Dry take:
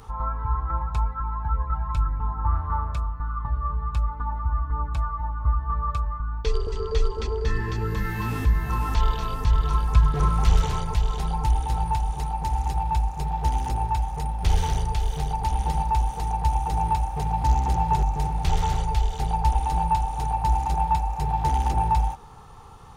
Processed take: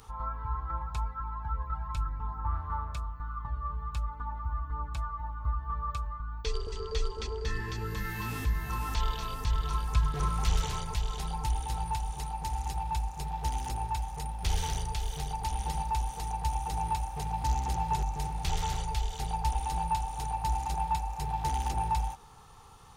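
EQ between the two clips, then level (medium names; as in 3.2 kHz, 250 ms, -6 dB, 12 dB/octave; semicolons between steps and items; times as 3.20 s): treble shelf 2 kHz +9.5 dB; -9.0 dB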